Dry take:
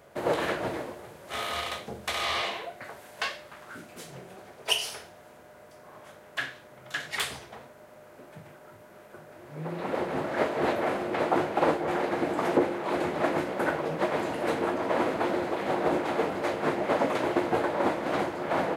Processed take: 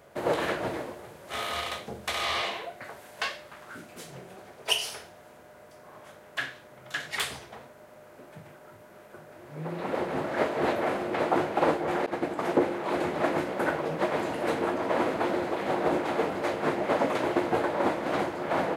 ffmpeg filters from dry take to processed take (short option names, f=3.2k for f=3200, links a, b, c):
-filter_complex "[0:a]asettb=1/sr,asplit=3[a][b][c];[a]atrim=end=12.064[d];[b]atrim=start=12.06:end=12.66,asetpts=PTS-STARTPTS,afade=t=in:d=0.004:c=qsin,afade=t=out:st=0.596:d=0.004:c=qsin,agate=range=-33dB:threshold=-26dB:ratio=3:release=100:detection=peak[e];[c]atrim=start=12.656[f];[d][e]acrossfade=d=0.004:c1=hsin:c2=qsin[g];[g][f]acrossfade=d=0.004:c1=qsin:c2=hsin"